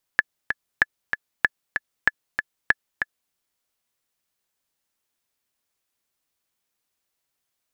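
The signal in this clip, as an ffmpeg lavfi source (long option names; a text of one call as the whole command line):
ffmpeg -f lavfi -i "aevalsrc='pow(10,(-2.5-7*gte(mod(t,2*60/191),60/191))/20)*sin(2*PI*1720*mod(t,60/191))*exp(-6.91*mod(t,60/191)/0.03)':duration=3.14:sample_rate=44100" out.wav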